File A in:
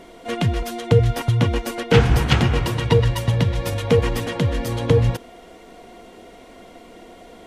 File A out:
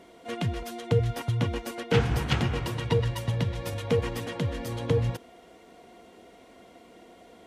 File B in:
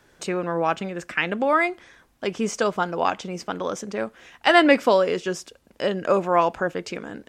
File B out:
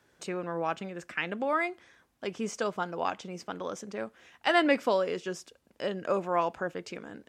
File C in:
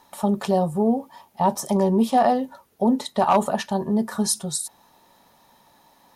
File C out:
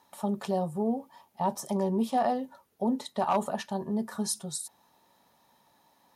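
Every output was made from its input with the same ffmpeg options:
ffmpeg -i in.wav -af "highpass=61,volume=-8.5dB" out.wav

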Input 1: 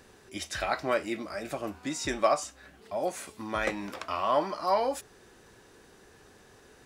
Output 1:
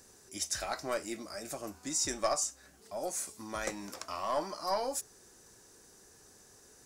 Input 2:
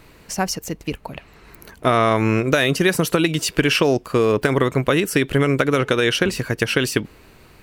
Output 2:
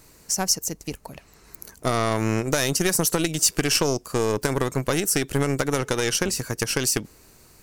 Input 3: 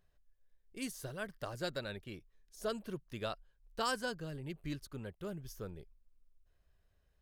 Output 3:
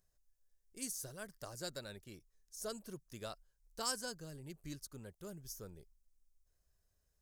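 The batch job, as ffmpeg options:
ffmpeg -i in.wav -af "aeval=exprs='0.891*(cos(1*acos(clip(val(0)/0.891,-1,1)))-cos(1*PI/2))+0.141*(cos(4*acos(clip(val(0)/0.891,-1,1)))-cos(4*PI/2))':channel_layout=same,highshelf=frequency=4400:width_type=q:width=1.5:gain=11,volume=-6.5dB" out.wav

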